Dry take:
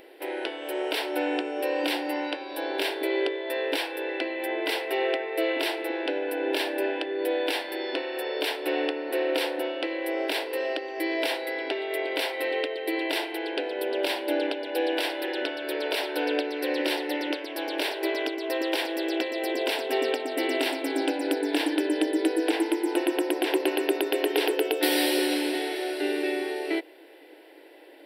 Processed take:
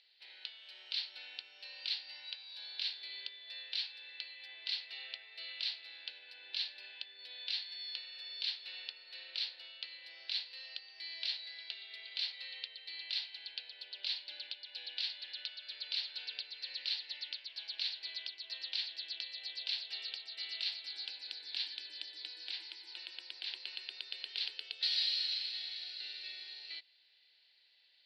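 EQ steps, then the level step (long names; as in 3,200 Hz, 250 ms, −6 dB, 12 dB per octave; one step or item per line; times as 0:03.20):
four-pole ladder band-pass 4,600 Hz, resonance 75%
high-frequency loss of the air 230 metres
+9.0 dB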